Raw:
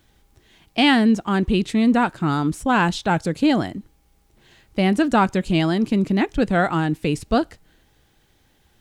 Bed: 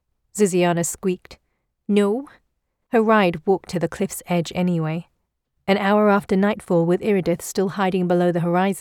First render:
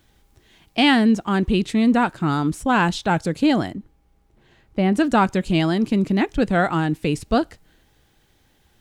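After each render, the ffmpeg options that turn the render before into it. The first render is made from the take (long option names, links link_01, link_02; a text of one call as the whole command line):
ffmpeg -i in.wav -filter_complex "[0:a]asettb=1/sr,asplit=3[link_01][link_02][link_03];[link_01]atrim=end=3.734[link_04];[link_02]atrim=start=3.73:end=4.95,asetpts=PTS-STARTPTS,afade=type=in:duration=0.004:curve=qsin,afade=type=out:start_time=1.216:duration=0.004:curve=qsin,highshelf=frequency=2700:gain=-12[link_05];[link_03]atrim=start=4.946[link_06];[link_04][link_05]acrossfade=duration=0.004:curve1=hsin:curve2=qsin[link_07];[link_07][link_06]acrossfade=duration=0.004:curve1=qsin:curve2=hsin" out.wav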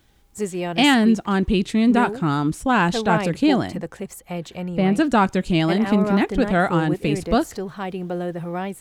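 ffmpeg -i in.wav -i bed.wav -filter_complex "[1:a]volume=-8.5dB[link_01];[0:a][link_01]amix=inputs=2:normalize=0" out.wav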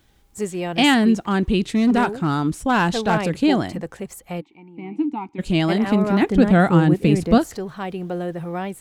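ffmpeg -i in.wav -filter_complex "[0:a]asettb=1/sr,asplit=3[link_01][link_02][link_03];[link_01]atrim=end=1.604[link_04];[link_02]atrim=start=1.6:end=3.25,asetpts=PTS-STARTPTS,afade=type=in:duration=0.004:curve=qsin,afade=type=out:start_time=1.646:duration=0.004:curve=qsin,asoftclip=type=hard:threshold=-11.5dB[link_05];[link_03]atrim=start=3.246[link_06];[link_04][link_05]acrossfade=duration=0.004:curve1=hsin:curve2=qsin[link_07];[link_07][link_06]acrossfade=duration=0.004:curve1=qsin:curve2=hsin,asplit=3[link_08][link_09][link_10];[link_08]afade=type=out:start_time=4.4:duration=0.02[link_11];[link_09]asplit=3[link_12][link_13][link_14];[link_12]bandpass=frequency=300:width_type=q:width=8,volume=0dB[link_15];[link_13]bandpass=frequency=870:width_type=q:width=8,volume=-6dB[link_16];[link_14]bandpass=frequency=2240:width_type=q:width=8,volume=-9dB[link_17];[link_15][link_16][link_17]amix=inputs=3:normalize=0,afade=type=in:start_time=4.4:duration=0.02,afade=type=out:start_time=5.38:duration=0.02[link_18];[link_10]afade=type=in:start_time=5.38:duration=0.02[link_19];[link_11][link_18][link_19]amix=inputs=3:normalize=0,asettb=1/sr,asplit=3[link_20][link_21][link_22];[link_20]atrim=end=6.224[link_23];[link_21]atrim=start=6.22:end=7.38,asetpts=PTS-STARTPTS,afade=type=in:duration=0.004:curve=qsin,afade=type=out:start_time=1.156:duration=0.004:curve=qsin,equalizer=frequency=190:width=0.78:gain=7.5[link_24];[link_22]atrim=start=7.376[link_25];[link_23][link_24]acrossfade=duration=0.004:curve1=hsin:curve2=qsin[link_26];[link_26][link_25]acrossfade=duration=0.004:curve1=qsin:curve2=hsin" out.wav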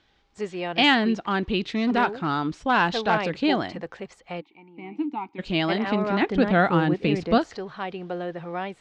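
ffmpeg -i in.wav -af "lowpass=frequency=4900:width=0.5412,lowpass=frequency=4900:width=1.3066,lowshelf=frequency=300:gain=-11.5" out.wav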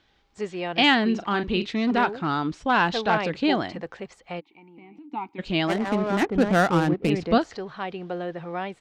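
ffmpeg -i in.wav -filter_complex "[0:a]asplit=3[link_01][link_02][link_03];[link_01]afade=type=out:start_time=1.13:duration=0.02[link_04];[link_02]asplit=2[link_05][link_06];[link_06]adelay=39,volume=-9dB[link_07];[link_05][link_07]amix=inputs=2:normalize=0,afade=type=in:start_time=1.13:duration=0.02,afade=type=out:start_time=1.64:duration=0.02[link_08];[link_03]afade=type=in:start_time=1.64:duration=0.02[link_09];[link_04][link_08][link_09]amix=inputs=3:normalize=0,asplit=3[link_10][link_11][link_12];[link_10]afade=type=out:start_time=4.39:duration=0.02[link_13];[link_11]acompressor=threshold=-44dB:ratio=6:attack=3.2:release=140:knee=1:detection=peak,afade=type=in:start_time=4.39:duration=0.02,afade=type=out:start_time=5.11:duration=0.02[link_14];[link_12]afade=type=in:start_time=5.11:duration=0.02[link_15];[link_13][link_14][link_15]amix=inputs=3:normalize=0,asettb=1/sr,asplit=3[link_16][link_17][link_18];[link_16]atrim=end=5.674[link_19];[link_17]atrim=start=5.67:end=7.1,asetpts=PTS-STARTPTS,afade=type=in:duration=0.004:curve=qsin,afade=type=out:start_time=1.426:duration=0.004:curve=qsin,adynamicsmooth=sensitivity=2.5:basefreq=660[link_20];[link_18]atrim=start=7.096[link_21];[link_19][link_20]acrossfade=duration=0.004:curve1=hsin:curve2=qsin[link_22];[link_22][link_21]acrossfade=duration=0.004:curve1=qsin:curve2=hsin" out.wav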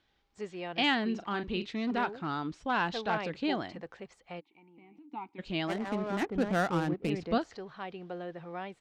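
ffmpeg -i in.wav -af "volume=-9dB" out.wav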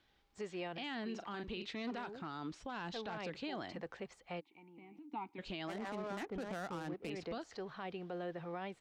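ffmpeg -i in.wav -filter_complex "[0:a]acrossover=split=380|4700[link_01][link_02][link_03];[link_01]acompressor=threshold=-45dB:ratio=4[link_04];[link_02]acompressor=threshold=-39dB:ratio=4[link_05];[link_03]acompressor=threshold=-55dB:ratio=4[link_06];[link_04][link_05][link_06]amix=inputs=3:normalize=0,alimiter=level_in=9.5dB:limit=-24dB:level=0:latency=1:release=26,volume=-9.5dB" out.wav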